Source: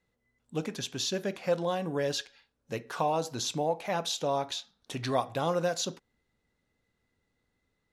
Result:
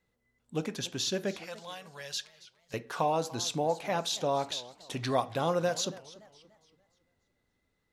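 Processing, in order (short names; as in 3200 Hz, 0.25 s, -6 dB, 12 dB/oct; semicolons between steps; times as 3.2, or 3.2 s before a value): 1.44–2.74 passive tone stack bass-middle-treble 10-0-10; warbling echo 0.285 s, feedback 39%, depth 209 cents, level -19 dB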